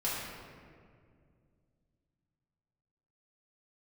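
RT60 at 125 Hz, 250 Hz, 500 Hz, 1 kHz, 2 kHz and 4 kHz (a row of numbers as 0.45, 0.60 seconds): 3.5, 3.1, 2.5, 1.8, 1.7, 1.1 seconds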